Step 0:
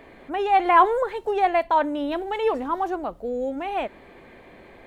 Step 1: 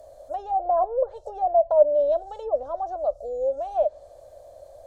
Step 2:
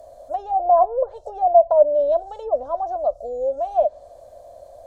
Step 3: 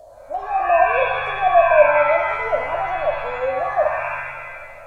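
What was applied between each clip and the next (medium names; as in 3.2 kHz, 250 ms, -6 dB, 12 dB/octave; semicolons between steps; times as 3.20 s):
low-pass that closes with the level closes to 800 Hz, closed at -17.5 dBFS; FFT filter 100 Hz 0 dB, 180 Hz -26 dB, 410 Hz -17 dB, 590 Hz +15 dB, 890 Hz -11 dB, 1.4 kHz -14 dB, 2.2 kHz -29 dB, 5.7 kHz +10 dB; trim -1 dB
small resonant body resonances 230/700/1000 Hz, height 7 dB; trim +1.5 dB
wow and flutter 19 cents; pitch-shifted reverb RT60 1.2 s, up +7 st, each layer -2 dB, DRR 3.5 dB; trim -1 dB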